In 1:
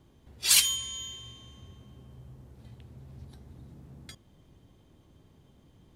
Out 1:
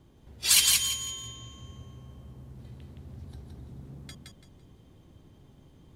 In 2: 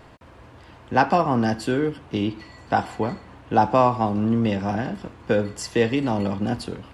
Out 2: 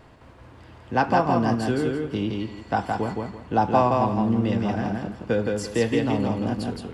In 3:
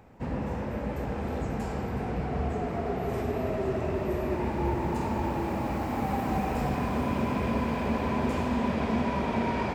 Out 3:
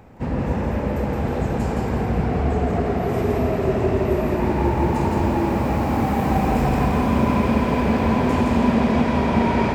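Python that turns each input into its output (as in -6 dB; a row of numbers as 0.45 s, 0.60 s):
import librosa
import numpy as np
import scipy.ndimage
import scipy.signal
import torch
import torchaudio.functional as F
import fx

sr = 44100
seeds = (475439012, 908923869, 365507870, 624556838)

p1 = fx.low_shelf(x, sr, hz=420.0, db=2.5)
p2 = p1 + fx.echo_feedback(p1, sr, ms=168, feedback_pct=26, wet_db=-3, dry=0)
y = librosa.util.normalize(p2) * 10.0 ** (-6 / 20.0)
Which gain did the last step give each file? 0.0 dB, -4.0 dB, +6.0 dB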